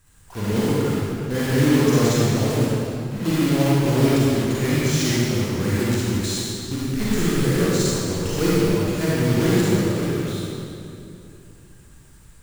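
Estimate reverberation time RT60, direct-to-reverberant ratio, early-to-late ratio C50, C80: 2.8 s, −8.0 dB, −6.0 dB, −3.5 dB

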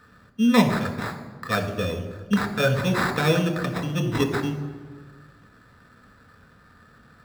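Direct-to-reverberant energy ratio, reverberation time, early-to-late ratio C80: 4.0 dB, 1.5 s, 11.0 dB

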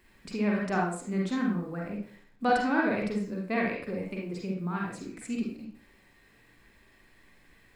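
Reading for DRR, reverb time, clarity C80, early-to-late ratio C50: −2.5 dB, 0.50 s, 7.0 dB, 1.0 dB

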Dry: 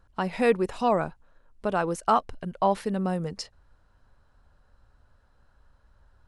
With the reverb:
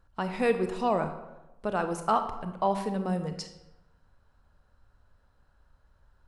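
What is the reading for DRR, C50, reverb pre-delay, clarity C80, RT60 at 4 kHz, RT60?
7.5 dB, 9.5 dB, 27 ms, 11.5 dB, 0.65 s, 1.0 s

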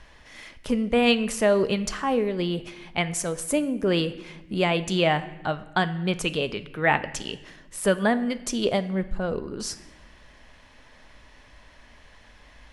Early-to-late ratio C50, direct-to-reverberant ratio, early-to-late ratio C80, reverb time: 15.0 dB, 11.5 dB, 17.0 dB, 1.0 s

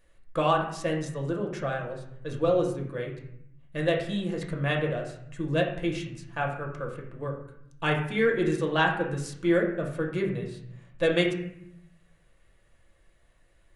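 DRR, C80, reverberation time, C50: −0.5 dB, 9.0 dB, 0.70 s, 6.0 dB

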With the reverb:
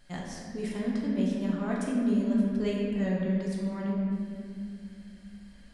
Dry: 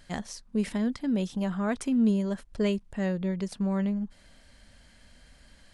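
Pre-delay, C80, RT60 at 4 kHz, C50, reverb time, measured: 6 ms, 1.5 dB, 1.4 s, −0.5 dB, 2.3 s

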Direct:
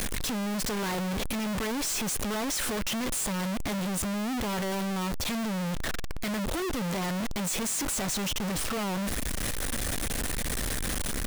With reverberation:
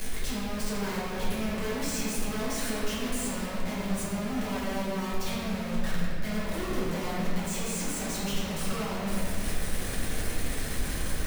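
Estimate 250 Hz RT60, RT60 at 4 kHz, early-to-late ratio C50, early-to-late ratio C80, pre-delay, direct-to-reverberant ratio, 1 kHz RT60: 3.3 s, 1.5 s, −2.5 dB, −0.5 dB, 5 ms, −8.5 dB, 2.3 s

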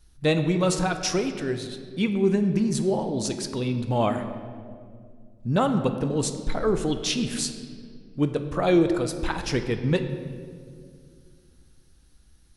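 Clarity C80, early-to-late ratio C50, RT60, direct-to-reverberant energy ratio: 10.0 dB, 9.0 dB, 2.1 s, 7.0 dB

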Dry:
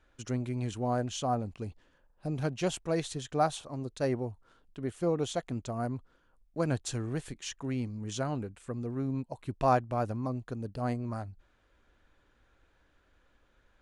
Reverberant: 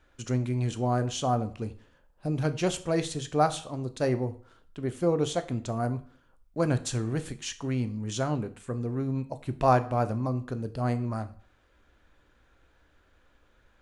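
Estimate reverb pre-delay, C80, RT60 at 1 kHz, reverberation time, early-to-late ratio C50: 12 ms, 20.0 dB, 0.50 s, 0.50 s, 16.0 dB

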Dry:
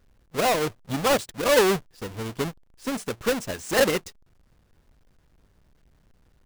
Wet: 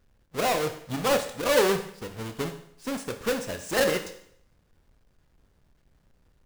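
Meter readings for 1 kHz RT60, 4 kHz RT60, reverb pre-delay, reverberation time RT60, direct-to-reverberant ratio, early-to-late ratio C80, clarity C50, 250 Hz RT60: 0.65 s, 0.65 s, 19 ms, 0.65 s, 6.5 dB, 13.0 dB, 10.0 dB, 0.65 s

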